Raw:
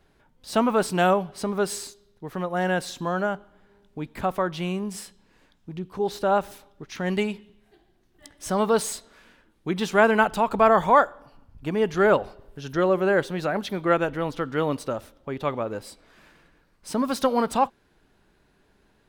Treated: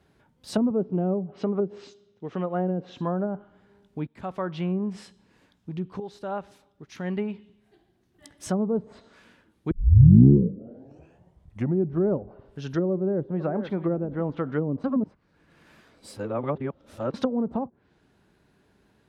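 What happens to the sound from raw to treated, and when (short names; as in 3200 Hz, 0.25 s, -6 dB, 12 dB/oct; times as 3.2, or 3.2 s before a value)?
0.7–2.97 speaker cabinet 120–6300 Hz, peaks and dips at 140 Hz -3 dB, 440 Hz +3 dB, 960 Hz -4 dB, 1700 Hz -4 dB, 2900 Hz +4 dB, 4500 Hz -6 dB
4.07–4.72 fade in, from -17 dB
6–8.54 fade in, from -12.5 dB
9.71 tape start 2.42 s
12.93–13.74 echo throw 0.47 s, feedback 25%, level -15.5 dB
14.84–17.14 reverse
whole clip: bell 130 Hz +5 dB 2.8 oct; treble ducked by the level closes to 360 Hz, closed at -17.5 dBFS; HPF 59 Hz; gain -2 dB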